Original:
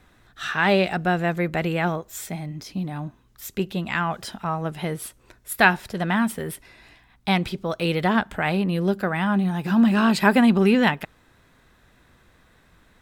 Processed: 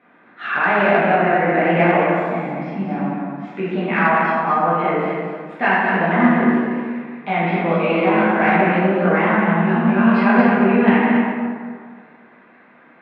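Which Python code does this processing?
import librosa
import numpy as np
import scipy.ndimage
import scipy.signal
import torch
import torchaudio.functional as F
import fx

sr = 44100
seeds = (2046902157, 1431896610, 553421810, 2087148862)

p1 = fx.wow_flutter(x, sr, seeds[0], rate_hz=2.1, depth_cents=93.0)
p2 = fx.over_compress(p1, sr, threshold_db=-23.0, ratio=-0.5)
p3 = p1 + (p2 * 10.0 ** (1.5 / 20.0))
p4 = scipy.signal.sosfilt(scipy.signal.ellip(3, 1.0, 80, [210.0, 2400.0], 'bandpass', fs=sr, output='sos'), p3)
p5 = p4 + fx.echo_single(p4, sr, ms=225, db=-6.0, dry=0)
p6 = fx.rev_plate(p5, sr, seeds[1], rt60_s=1.9, hf_ratio=0.55, predelay_ms=0, drr_db=-9.5)
p7 = fx.cheby_harmonics(p6, sr, harmonics=(3,), levels_db=(-28,), full_scale_db=5.5)
y = p7 * 10.0 ** (-7.0 / 20.0)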